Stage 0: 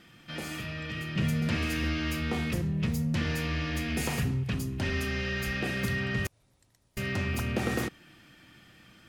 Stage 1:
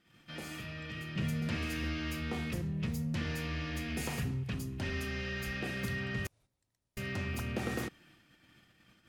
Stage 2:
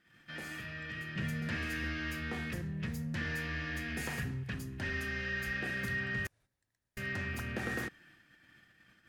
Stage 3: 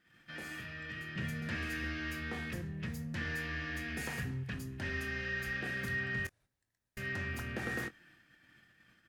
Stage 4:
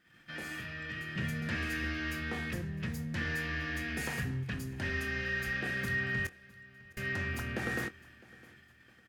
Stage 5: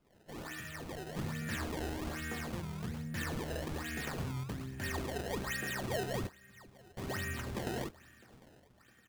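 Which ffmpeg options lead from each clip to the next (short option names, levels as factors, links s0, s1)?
-af "agate=range=0.316:threshold=0.00178:ratio=16:detection=peak,volume=0.501"
-af "equalizer=f=1700:t=o:w=0.44:g=11.5,volume=0.708"
-filter_complex "[0:a]asplit=2[s0][s1];[s1]adelay=23,volume=0.224[s2];[s0][s2]amix=inputs=2:normalize=0,volume=0.841"
-af "aecho=1:1:658|1316|1974:0.0794|0.0334|0.014,volume=1.41"
-af "acrusher=samples=22:mix=1:aa=0.000001:lfo=1:lforange=35.2:lforate=1.2,volume=0.708"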